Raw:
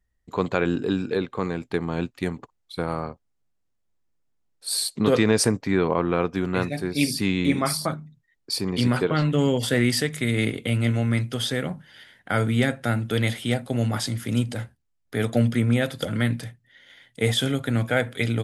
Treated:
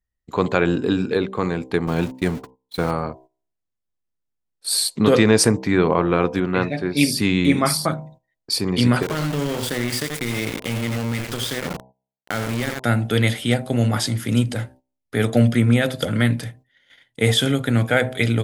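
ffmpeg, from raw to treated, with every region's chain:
ffmpeg -i in.wav -filter_complex "[0:a]asettb=1/sr,asplit=3[link_01][link_02][link_03];[link_01]atrim=end=1.874[link_04];[link_02]atrim=start=1.87:end=2.91,asetpts=PTS-STARTPTS,afade=type=in:duration=0.004:curve=qsin,afade=type=out:start_time=1.036:duration=0.004:curve=qsin,aeval=exprs='val(0)+0.5*0.0168*sgn(val(0))':channel_layout=same,agate=range=-38dB:threshold=-36dB:ratio=16:release=100:detection=peak[link_05];[link_03]atrim=start=2.906[link_06];[link_04][link_05]acrossfade=duration=0.004:curve1=hsin:curve2=qsin[link_07];[link_07][link_06]acrossfade=duration=0.004:curve1=qsin:curve2=hsin,asettb=1/sr,asplit=3[link_08][link_09][link_10];[link_08]atrim=end=6.404[link_11];[link_09]atrim=start=6.4:end=6.97,asetpts=PTS-STARTPTS,afade=type=in:duration=0.004:curve=qsin,afade=type=out:start_time=0.566:duration=0.004:curve=qsin,lowpass=3700,lowshelf=frequency=71:gain=-11.5[link_12];[link_10]atrim=start=6.966[link_13];[link_11][link_12]acrossfade=duration=0.004:curve1=hsin:curve2=qsin[link_14];[link_14][link_13]acrossfade=duration=0.004:curve1=qsin:curve2=hsin,asettb=1/sr,asplit=3[link_15][link_16][link_17];[link_15]atrim=end=9.024[link_18];[link_16]atrim=start=9.02:end=12.84,asetpts=PTS-STARTPTS,afade=type=in:duration=0.004:curve=qsin,afade=type=out:start_time=3.816:duration=0.004:curve=qsin,aecho=1:1:84:0.376,atrim=end_sample=168462,acompressor=threshold=-26dB:ratio=3:attack=3.2:release=140:knee=1:detection=peak,aeval=exprs='val(0)*gte(abs(val(0)),0.0335)':channel_layout=same[link_19];[link_17]atrim=start=12.836[link_20];[link_18][link_19]acrossfade=duration=0.004:curve1=hsin:curve2=qsin[link_21];[link_21][link_20]acrossfade=duration=0.004:curve1=qsin:curve2=hsin,bandreject=frequency=64.33:width_type=h:width=4,bandreject=frequency=128.66:width_type=h:width=4,bandreject=frequency=192.99:width_type=h:width=4,bandreject=frequency=257.32:width_type=h:width=4,bandreject=frequency=321.65:width_type=h:width=4,bandreject=frequency=385.98:width_type=h:width=4,bandreject=frequency=450.31:width_type=h:width=4,bandreject=frequency=514.64:width_type=h:width=4,bandreject=frequency=578.97:width_type=h:width=4,bandreject=frequency=643.3:width_type=h:width=4,bandreject=frequency=707.63:width_type=h:width=4,bandreject=frequency=771.96:width_type=h:width=4,bandreject=frequency=836.29:width_type=h:width=4,bandreject=frequency=900.62:width_type=h:width=4,bandreject=frequency=964.95:width_type=h:width=4,bandreject=frequency=1029.28:width_type=h:width=4,agate=range=-13dB:threshold=-49dB:ratio=16:detection=peak,volume=5dB" out.wav

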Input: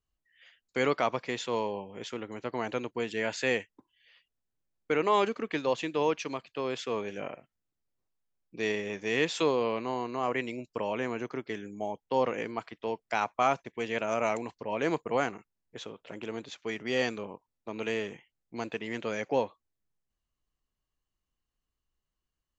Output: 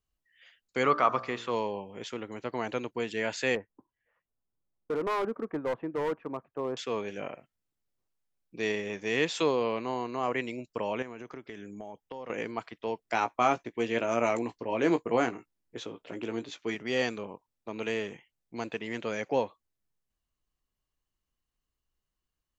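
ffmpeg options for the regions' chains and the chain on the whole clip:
ffmpeg -i in.wav -filter_complex "[0:a]asettb=1/sr,asplit=3[link_01][link_02][link_03];[link_01]atrim=end=0.834[link_04];[link_02]atrim=start=0.83:end=1.51,asetpts=PTS-STARTPTS,afade=type=in:duration=0.004:curve=qsin,afade=type=out:start_time=0.676:duration=0.004:curve=qsin,bandreject=frequency=58.84:width_type=h:width=4,bandreject=frequency=117.68:width_type=h:width=4,bandreject=frequency=176.52:width_type=h:width=4,bandreject=frequency=235.36:width_type=h:width=4,bandreject=frequency=294.2:width_type=h:width=4,bandreject=frequency=353.04:width_type=h:width=4,bandreject=frequency=411.88:width_type=h:width=4,bandreject=frequency=470.72:width_type=h:width=4,bandreject=frequency=529.56:width_type=h:width=4,bandreject=frequency=588.4:width_type=h:width=4,bandreject=frequency=647.24:width_type=h:width=4,bandreject=frequency=706.08:width_type=h:width=4,bandreject=frequency=764.92:width_type=h:width=4,bandreject=frequency=823.76:width_type=h:width=4,bandreject=frequency=882.6:width_type=h:width=4,bandreject=frequency=941.44:width_type=h:width=4,bandreject=frequency=1000.28:width_type=h:width=4,bandreject=frequency=1059.12:width_type=h:width=4,bandreject=frequency=1117.96:width_type=h:width=4,bandreject=frequency=1176.8:width_type=h:width=4,bandreject=frequency=1235.64:width_type=h:width=4,bandreject=frequency=1294.48:width_type=h:width=4,bandreject=frequency=1353.32:width_type=h:width=4,bandreject=frequency=1412.16:width_type=h:width=4,bandreject=frequency=1471:width_type=h:width=4,bandreject=frequency=1529.84:width_type=h:width=4,bandreject=frequency=1588.68:width_type=h:width=4,bandreject=frequency=1647.52:width_type=h:width=4,bandreject=frequency=1706.36:width_type=h:width=4,bandreject=frequency=1765.2:width_type=h:width=4,bandreject=frequency=1824.04:width_type=h:width=4,acrossover=split=3000[link_05][link_06];[link_06]acompressor=threshold=-48dB:ratio=4:attack=1:release=60[link_07];[link_05][link_07]amix=inputs=2:normalize=0,equalizer=frequency=1200:width=3.7:gain=11[link_08];[link_03]atrim=start=1.506[link_09];[link_04][link_08]acrossfade=duration=0.004:curve1=hsin:curve2=qsin[link_10];[link_10][link_09]acrossfade=duration=0.004:curve1=qsin:curve2=hsin,asettb=1/sr,asplit=3[link_11][link_12][link_13];[link_11]atrim=end=3.554[link_14];[link_12]atrim=start=3.55:end=6.77,asetpts=PTS-STARTPTS,afade=type=in:duration=0.004:curve=qsin,afade=type=out:start_time=3.216:duration=0.004:curve=qsin,lowpass=frequency=1300:width=0.5412,lowpass=frequency=1300:width=1.3066,asoftclip=type=hard:threshold=-26dB[link_15];[link_13]atrim=start=6.766[link_16];[link_14][link_15]acrossfade=duration=0.004:curve1=hsin:curve2=qsin[link_17];[link_17][link_16]acrossfade=duration=0.004:curve1=qsin:curve2=hsin,asettb=1/sr,asplit=3[link_18][link_19][link_20];[link_18]atrim=end=11.024[link_21];[link_19]atrim=start=11.02:end=12.3,asetpts=PTS-STARTPTS,afade=type=in:duration=0.004:curve=qsin,afade=type=out:start_time=1.276:duration=0.004:curve=qsin,bandreject=frequency=4300:width=6.6,acompressor=threshold=-38dB:ratio=6:attack=3.2:release=140:knee=1:detection=peak[link_22];[link_20]atrim=start=12.296[link_23];[link_21][link_22]acrossfade=duration=0.004:curve1=hsin:curve2=qsin[link_24];[link_24][link_23]acrossfade=duration=0.004:curve1=qsin:curve2=hsin,asettb=1/sr,asplit=3[link_25][link_26][link_27];[link_25]atrim=end=13.034[link_28];[link_26]atrim=start=13.03:end=16.75,asetpts=PTS-STARTPTS,afade=type=in:duration=0.004:curve=qsin,afade=type=out:start_time=3.716:duration=0.004:curve=qsin,equalizer=frequency=310:width=2.4:gain=7,asplit=2[link_29][link_30];[link_30]adelay=17,volume=-8.5dB[link_31];[link_29][link_31]amix=inputs=2:normalize=0,atrim=end_sample=164052[link_32];[link_27]atrim=start=16.746[link_33];[link_28][link_32]acrossfade=duration=0.004:curve1=hsin:curve2=qsin[link_34];[link_34][link_33]acrossfade=duration=0.004:curve1=qsin:curve2=hsin" out.wav

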